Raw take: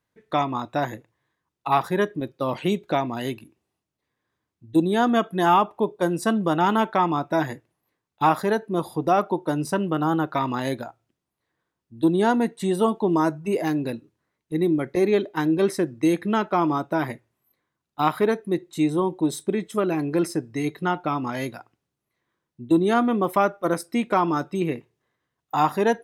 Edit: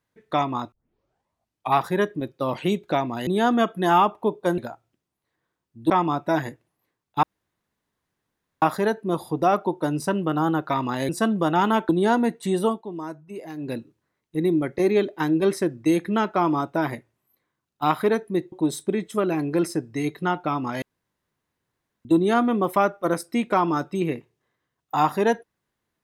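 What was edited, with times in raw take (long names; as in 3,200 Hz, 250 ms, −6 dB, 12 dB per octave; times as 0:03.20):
0:00.72: tape start 1.02 s
0:03.27–0:04.83: remove
0:06.14–0:06.94: swap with 0:10.74–0:12.06
0:08.27: splice in room tone 1.39 s
0:12.80–0:13.92: duck −12.5 dB, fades 0.19 s
0:18.69–0:19.12: remove
0:21.42–0:22.65: fill with room tone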